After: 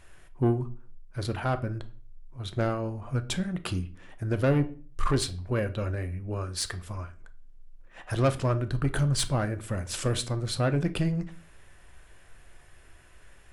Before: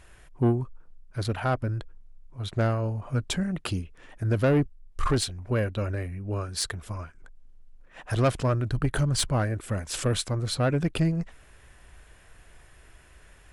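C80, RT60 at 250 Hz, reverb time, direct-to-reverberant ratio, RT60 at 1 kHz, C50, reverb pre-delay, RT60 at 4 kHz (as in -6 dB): 22.0 dB, 0.55 s, 0.45 s, 9.5 dB, 0.40 s, 16.5 dB, 3 ms, 0.35 s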